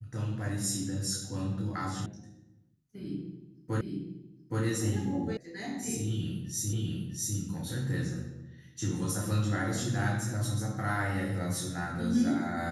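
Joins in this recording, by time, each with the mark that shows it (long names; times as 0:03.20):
0:02.06: cut off before it has died away
0:03.81: the same again, the last 0.82 s
0:05.37: cut off before it has died away
0:06.73: the same again, the last 0.65 s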